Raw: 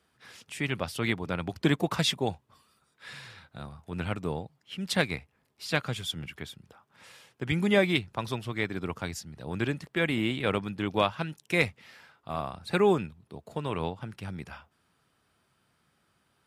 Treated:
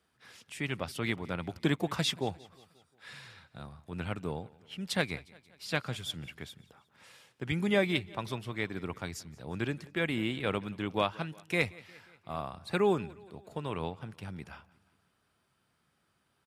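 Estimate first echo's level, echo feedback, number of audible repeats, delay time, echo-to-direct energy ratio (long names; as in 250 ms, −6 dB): −22.5 dB, 55%, 3, 178 ms, −21.0 dB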